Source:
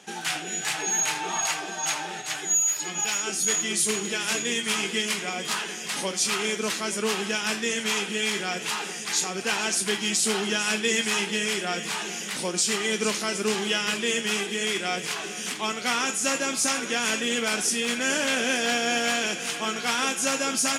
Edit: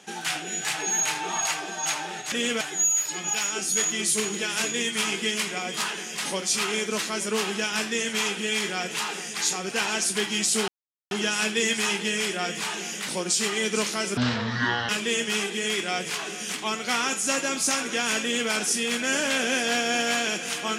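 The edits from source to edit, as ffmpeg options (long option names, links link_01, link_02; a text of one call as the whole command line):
ffmpeg -i in.wav -filter_complex "[0:a]asplit=6[link_01][link_02][link_03][link_04][link_05][link_06];[link_01]atrim=end=2.322[link_07];[link_02]atrim=start=17.188:end=17.482[link_08];[link_03]atrim=start=2.318:end=10.39,asetpts=PTS-STARTPTS,afade=type=out:start_time=8.068:duration=0.004:curve=hsin,apad=pad_dur=0.43[link_09];[link_04]atrim=start=10.39:end=13.454,asetpts=PTS-STARTPTS,afade=type=in:duration=0.004:curve=hsin[link_10];[link_05]atrim=start=13.45:end=13.86,asetpts=PTS-STARTPTS,asetrate=25137,aresample=44100,atrim=end_sample=31721,asetpts=PTS-STARTPTS[link_11];[link_06]atrim=start=13.856[link_12];[link_07][link_08]acrossfade=duration=0.004:curve1=hsin:curve2=hsin[link_13];[link_09][link_10]concat=n=2:v=0:a=1[link_14];[link_13][link_14]acrossfade=duration=0.004:curve1=hsin:curve2=hsin[link_15];[link_15][link_11]acrossfade=duration=0.004:curve1=hsin:curve2=hsin[link_16];[link_16][link_12]acrossfade=duration=0.004:curve1=hsin:curve2=hsin" out.wav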